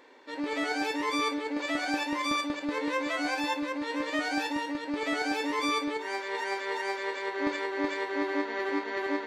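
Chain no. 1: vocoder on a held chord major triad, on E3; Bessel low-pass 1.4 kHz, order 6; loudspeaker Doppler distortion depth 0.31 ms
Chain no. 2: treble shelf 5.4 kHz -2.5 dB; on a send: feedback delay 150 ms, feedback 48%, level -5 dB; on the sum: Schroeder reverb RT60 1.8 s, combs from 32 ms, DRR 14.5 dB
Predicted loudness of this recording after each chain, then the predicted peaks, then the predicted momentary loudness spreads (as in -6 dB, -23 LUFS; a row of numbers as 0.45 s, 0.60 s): -33.0 LUFS, -29.0 LUFS; -17.5 dBFS, -16.0 dBFS; 6 LU, 4 LU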